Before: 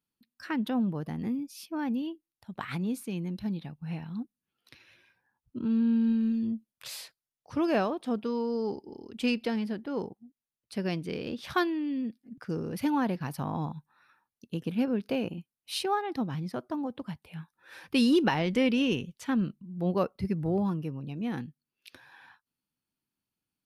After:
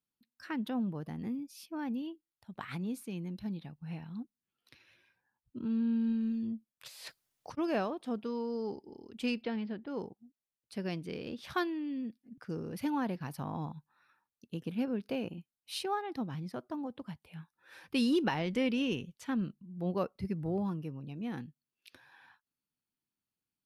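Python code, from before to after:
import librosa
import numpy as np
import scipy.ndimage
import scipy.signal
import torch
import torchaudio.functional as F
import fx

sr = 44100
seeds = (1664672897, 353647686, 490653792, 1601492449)

y = fx.over_compress(x, sr, threshold_db=-52.0, ratio=-1.0, at=(6.87, 7.57), fade=0.02)
y = fx.lowpass(y, sr, hz=4100.0, slope=24, at=(9.41, 9.86), fade=0.02)
y = y * 10.0 ** (-5.5 / 20.0)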